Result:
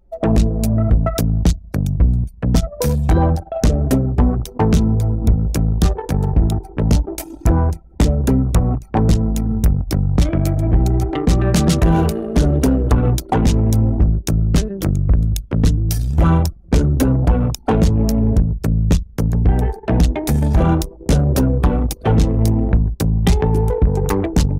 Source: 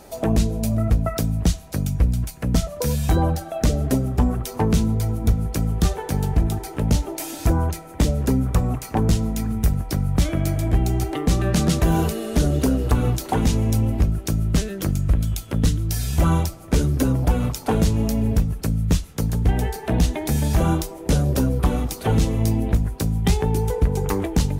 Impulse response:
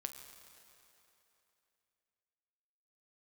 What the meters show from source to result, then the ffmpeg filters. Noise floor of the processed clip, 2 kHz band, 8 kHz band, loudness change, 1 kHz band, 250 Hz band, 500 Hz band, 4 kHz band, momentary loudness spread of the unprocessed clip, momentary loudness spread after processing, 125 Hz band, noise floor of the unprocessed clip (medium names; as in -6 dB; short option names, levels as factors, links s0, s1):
-39 dBFS, +2.5 dB, +1.0 dB, +5.0 dB, +4.0 dB, +5.0 dB, +4.5 dB, +1.5 dB, 4 LU, 4 LU, +5.0 dB, -38 dBFS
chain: -filter_complex "[0:a]asplit=2[s0][s1];[1:a]atrim=start_sample=2205,asetrate=36603,aresample=44100[s2];[s1][s2]afir=irnorm=-1:irlink=0,volume=0.299[s3];[s0][s3]amix=inputs=2:normalize=0,acontrast=74,anlmdn=10000,volume=0.75"